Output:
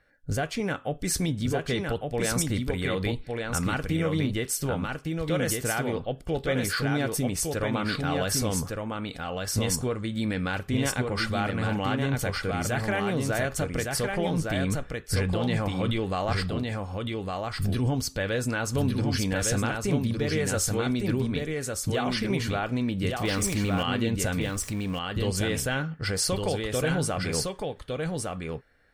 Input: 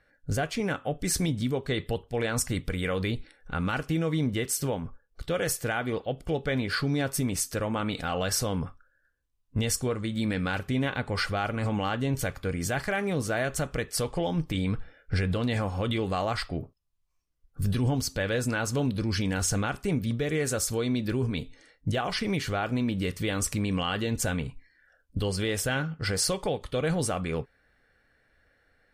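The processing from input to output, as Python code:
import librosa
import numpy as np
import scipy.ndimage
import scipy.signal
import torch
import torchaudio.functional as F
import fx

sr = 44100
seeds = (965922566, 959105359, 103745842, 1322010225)

p1 = fx.zero_step(x, sr, step_db=-36.5, at=(23.25, 23.83))
y = p1 + fx.echo_single(p1, sr, ms=1159, db=-3.5, dry=0)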